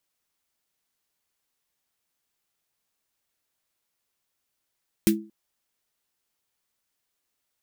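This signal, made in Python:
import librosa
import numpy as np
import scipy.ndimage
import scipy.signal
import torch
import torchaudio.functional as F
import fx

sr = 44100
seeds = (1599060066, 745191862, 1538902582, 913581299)

y = fx.drum_snare(sr, seeds[0], length_s=0.23, hz=210.0, second_hz=330.0, noise_db=-5.5, noise_from_hz=1600.0, decay_s=0.35, noise_decay_s=0.12)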